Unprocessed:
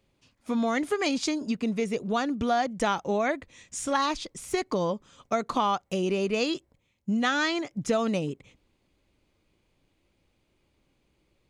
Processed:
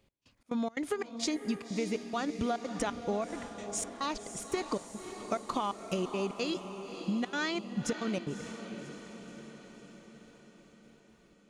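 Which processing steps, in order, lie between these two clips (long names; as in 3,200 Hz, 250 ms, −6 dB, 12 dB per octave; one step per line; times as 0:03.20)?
downward compressor, threshold −29 dBFS, peak gain reduction 9 dB
gate pattern "x..xx.xx.xx" 176 BPM −24 dB
feedback delay with all-pass diffusion 571 ms, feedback 59%, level −9.5 dB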